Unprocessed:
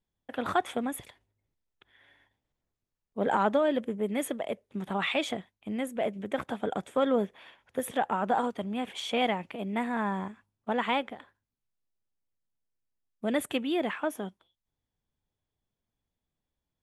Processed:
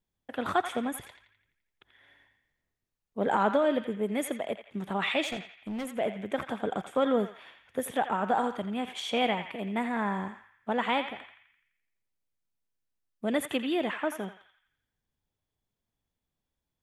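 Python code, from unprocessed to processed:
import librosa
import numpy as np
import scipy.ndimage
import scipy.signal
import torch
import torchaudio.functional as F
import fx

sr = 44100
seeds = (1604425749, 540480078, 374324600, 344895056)

y = fx.clip_hard(x, sr, threshold_db=-31.5, at=(5.25, 5.89))
y = fx.echo_banded(y, sr, ms=85, feedback_pct=56, hz=2100.0, wet_db=-7.0)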